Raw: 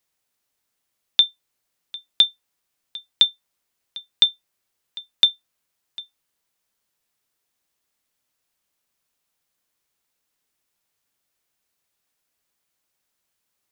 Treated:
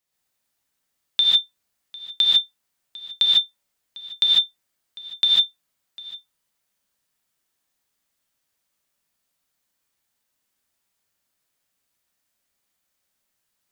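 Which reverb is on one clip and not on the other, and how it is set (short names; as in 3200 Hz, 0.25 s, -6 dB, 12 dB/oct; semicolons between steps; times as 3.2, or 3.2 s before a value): non-linear reverb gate 0.17 s rising, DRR -5.5 dB; gain -6 dB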